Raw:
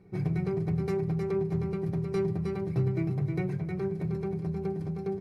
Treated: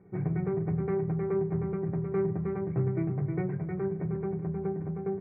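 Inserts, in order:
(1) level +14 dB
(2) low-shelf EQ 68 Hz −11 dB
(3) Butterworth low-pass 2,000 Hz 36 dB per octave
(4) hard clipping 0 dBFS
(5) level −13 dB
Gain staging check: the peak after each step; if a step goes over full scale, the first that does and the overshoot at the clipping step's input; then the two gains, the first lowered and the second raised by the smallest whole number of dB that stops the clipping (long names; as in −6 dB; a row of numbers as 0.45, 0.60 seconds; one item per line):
−4.5, −5.5, −5.5, −5.5, −18.5 dBFS
no step passes full scale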